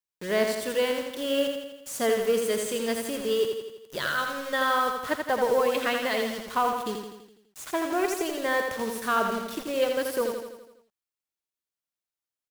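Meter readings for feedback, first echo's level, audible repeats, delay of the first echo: 56%, −5.0 dB, 6, 83 ms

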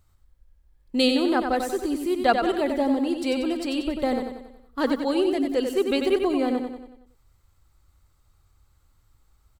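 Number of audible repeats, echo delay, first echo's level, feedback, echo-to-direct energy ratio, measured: 5, 93 ms, −6.0 dB, 49%, −5.0 dB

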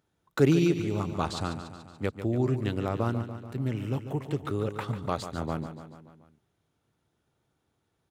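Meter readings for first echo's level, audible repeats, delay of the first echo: −10.5 dB, 5, 144 ms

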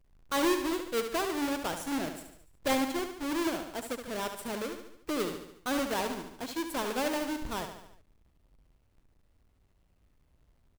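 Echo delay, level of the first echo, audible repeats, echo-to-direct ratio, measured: 72 ms, −8.0 dB, 5, −6.5 dB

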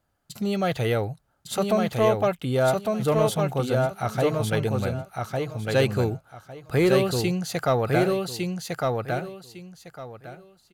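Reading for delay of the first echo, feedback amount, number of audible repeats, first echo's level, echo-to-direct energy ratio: 1,155 ms, 21%, 3, −3.0 dB, −3.0 dB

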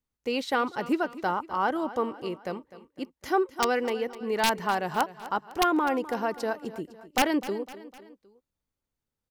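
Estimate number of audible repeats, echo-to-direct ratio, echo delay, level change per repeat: 3, −15.0 dB, 253 ms, −6.0 dB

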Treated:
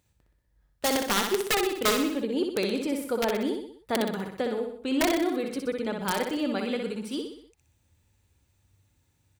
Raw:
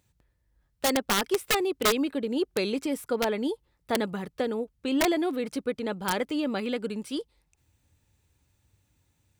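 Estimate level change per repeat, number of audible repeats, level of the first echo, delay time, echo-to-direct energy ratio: −6.0 dB, 5, −5.0 dB, 62 ms, −3.5 dB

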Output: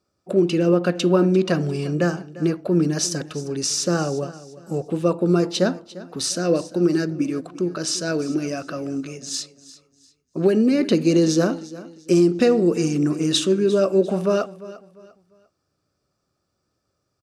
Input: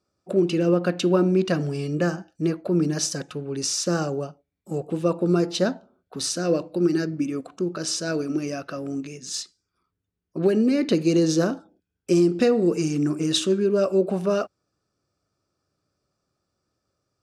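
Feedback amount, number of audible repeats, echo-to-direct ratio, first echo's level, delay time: 32%, 2, −17.0 dB, −17.5 dB, 348 ms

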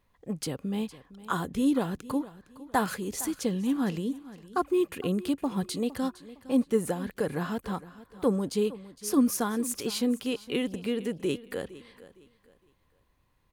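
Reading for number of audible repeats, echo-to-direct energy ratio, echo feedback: 2, −17.0 dB, 30%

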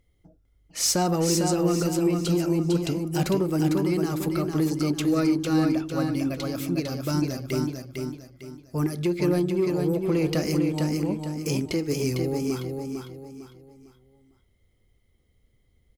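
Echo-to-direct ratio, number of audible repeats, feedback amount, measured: −4.0 dB, 4, 35%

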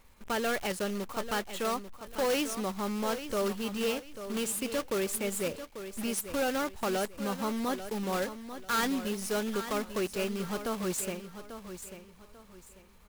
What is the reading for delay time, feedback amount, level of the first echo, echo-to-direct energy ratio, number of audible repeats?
842 ms, 30%, −11.0 dB, −10.5 dB, 3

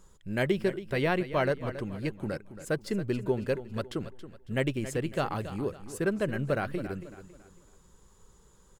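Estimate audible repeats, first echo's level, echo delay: 3, −13.0 dB, 276 ms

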